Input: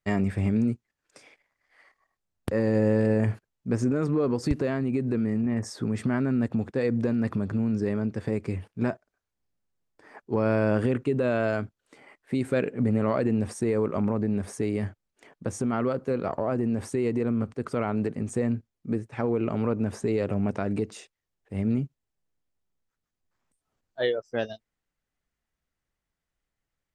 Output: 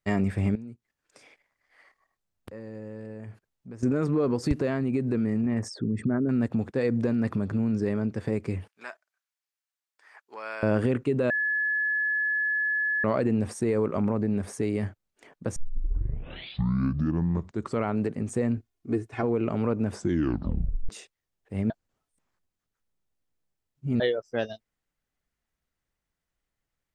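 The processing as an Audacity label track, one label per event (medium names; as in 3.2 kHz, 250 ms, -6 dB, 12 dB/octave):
0.550000	3.830000	compression 2:1, threshold -51 dBFS
5.680000	6.290000	resonances exaggerated exponent 2
8.680000	10.630000	high-pass 1.3 kHz
11.300000	13.040000	bleep 1.71 kHz -23.5 dBFS
15.560000	15.560000	tape start 2.30 s
18.570000	19.230000	comb 2.8 ms, depth 73%
19.920000	19.920000	tape stop 0.97 s
21.700000	24.000000	reverse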